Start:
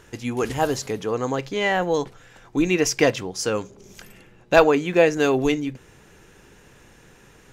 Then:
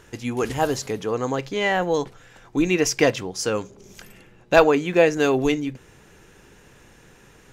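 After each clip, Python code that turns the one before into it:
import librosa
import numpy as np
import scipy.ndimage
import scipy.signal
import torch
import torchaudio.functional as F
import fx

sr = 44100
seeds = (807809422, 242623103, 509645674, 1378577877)

y = x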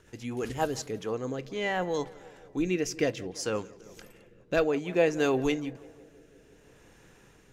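y = fx.echo_tape(x, sr, ms=169, feedback_pct=78, wet_db=-20, lp_hz=2100.0, drive_db=2.0, wow_cents=18)
y = fx.rotary_switch(y, sr, hz=8.0, then_hz=0.6, switch_at_s=0.38)
y = F.gain(torch.from_numpy(y), -6.0).numpy()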